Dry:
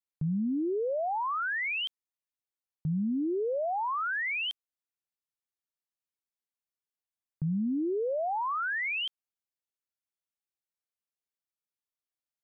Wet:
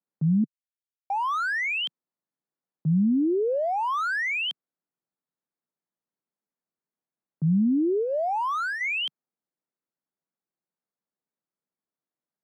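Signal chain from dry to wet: local Wiener filter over 15 samples; 7.64–8.81 s: graphic EQ with 31 bands 500 Hz -6 dB, 2 kHz -9 dB, 3.15 kHz -5 dB; peak limiter -30 dBFS, peak gain reduction 4.5 dB; 0.44–1.10 s: mute; steep high-pass 150 Hz; bass shelf 310 Hz +10 dB; trim +5.5 dB

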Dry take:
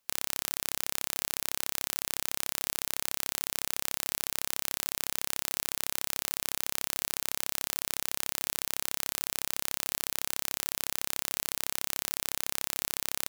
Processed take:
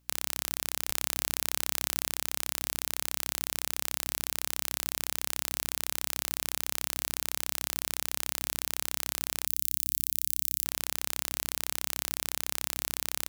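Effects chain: 9.47–10.65 s: differentiator; hum 60 Hz, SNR 35 dB; 0.90–2.08 s: level flattener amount 70%

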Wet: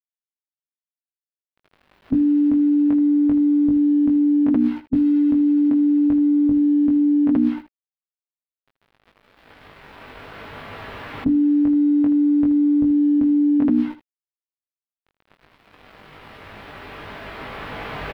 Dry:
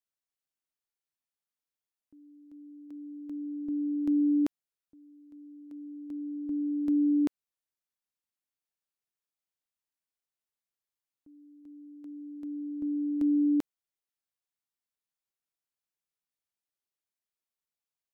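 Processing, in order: recorder AGC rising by 5.9 dB/s; tone controls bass +1 dB, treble -12 dB; hum notches 60/120/180/240/300/360 Hz; comb of notches 180 Hz; companded quantiser 8-bit; formant shift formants -2 st; distance through air 420 m; early reflections 20 ms -4 dB, 79 ms -12 dB; level flattener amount 100%; trim +7 dB

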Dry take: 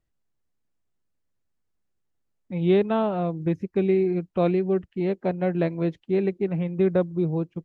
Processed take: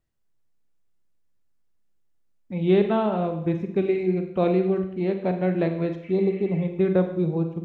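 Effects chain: spectral replace 6.06–6.62 s, 1.2–3.3 kHz after; Schroeder reverb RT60 0.74 s, combs from 33 ms, DRR 6 dB

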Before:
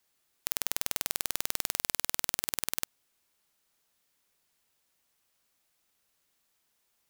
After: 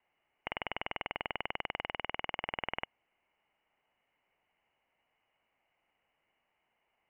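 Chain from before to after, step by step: rippled Chebyshev low-pass 3 kHz, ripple 9 dB; trim +7.5 dB

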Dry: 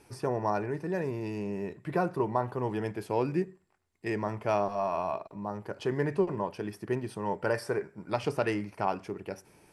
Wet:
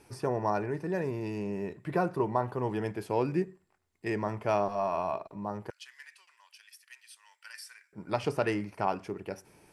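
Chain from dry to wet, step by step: 5.70–7.93 s: Bessel high-pass 3 kHz, order 4

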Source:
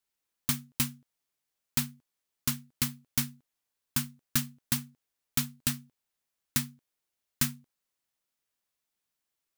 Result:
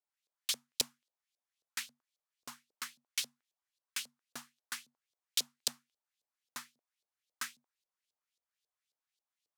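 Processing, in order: tone controls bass -11 dB, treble +13 dB; LFO band-pass saw up 3.7 Hz 480–4200 Hz

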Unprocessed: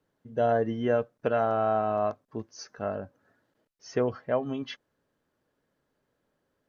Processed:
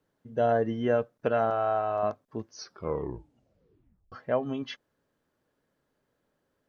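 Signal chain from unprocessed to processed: 1.50–2.03 s: peaking EQ 200 Hz -14.5 dB 1.1 oct; 2.54 s: tape stop 1.58 s

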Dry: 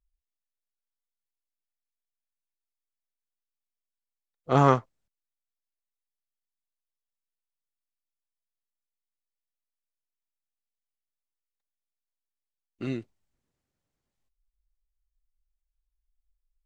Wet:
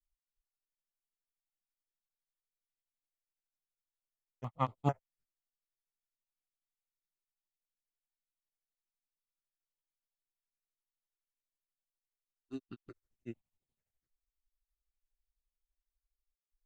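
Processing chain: granulator, grains 12 per s, spray 348 ms; stepped phaser 4.5 Hz 570–5800 Hz; trim -5 dB

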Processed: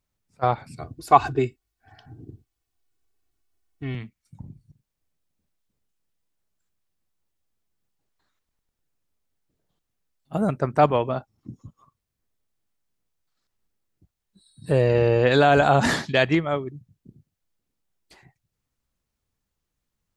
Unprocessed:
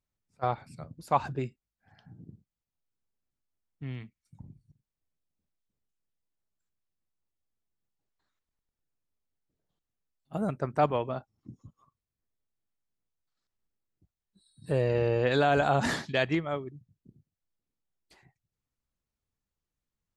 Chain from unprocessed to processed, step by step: 0.77–3.95 s: comb 2.7 ms, depth 88%; trim +7.5 dB

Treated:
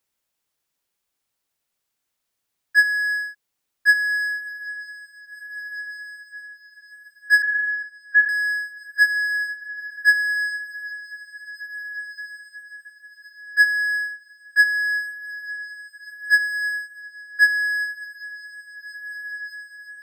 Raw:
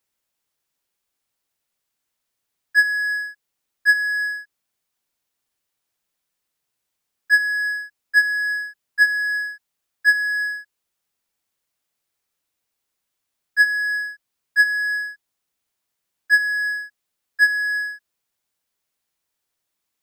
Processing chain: 7.42–8.29 s: LPC vocoder at 8 kHz pitch kept; echo that smears into a reverb 1826 ms, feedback 45%, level -13 dB

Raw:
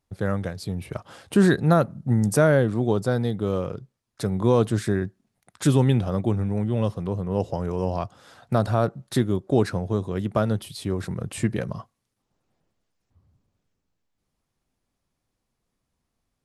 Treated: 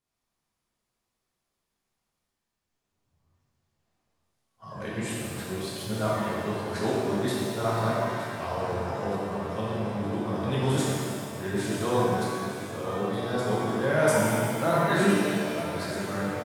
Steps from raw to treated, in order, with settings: reverse the whole clip; bass shelf 430 Hz -10 dB; feedback delay 917 ms, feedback 56%, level -13 dB; pitch-shifted reverb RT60 2.1 s, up +7 st, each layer -8 dB, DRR -6.5 dB; trim -6.5 dB

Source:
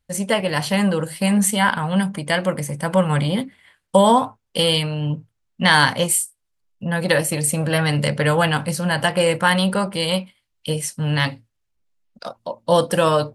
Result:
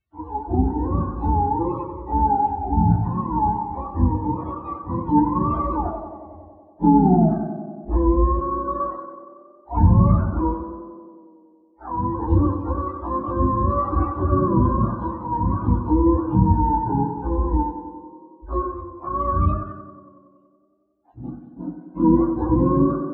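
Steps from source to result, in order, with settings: spectrum inverted on a logarithmic axis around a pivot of 540 Hz; speed mistake 78 rpm record played at 45 rpm; tape echo 92 ms, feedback 85%, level -8.5 dB, low-pass 1.6 kHz; low-pass that closes with the level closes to 2.7 kHz, closed at -16 dBFS; hum notches 50/100/150 Hz; level-controlled noise filter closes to 1.8 kHz, open at -12 dBFS

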